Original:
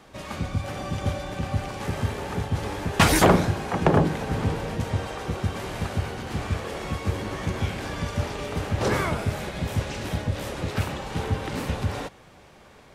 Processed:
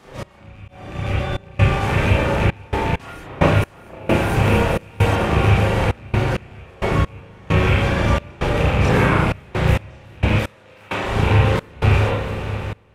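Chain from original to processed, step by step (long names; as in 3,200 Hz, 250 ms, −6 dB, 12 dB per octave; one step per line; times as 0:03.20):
loose part that buzzes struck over −23 dBFS, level −17 dBFS
multi-voice chorus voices 4, 0.17 Hz, delay 30 ms, depth 2.2 ms
echo machine with several playback heads 228 ms, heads second and third, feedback 72%, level −16 dB
speech leveller within 3 dB 0.5 s
0:03.62–0:05.16: high-shelf EQ 7,700 Hz +9 dB
0:10.32–0:11.04: high-pass filter 560 Hz 6 dB per octave
convolution reverb RT60 0.70 s, pre-delay 38 ms, DRR −8 dB
gate pattern "x..xxx.xxxx.x.." 66 BPM −24 dB
0:00.68–0:01.59: fade in
level +3.5 dB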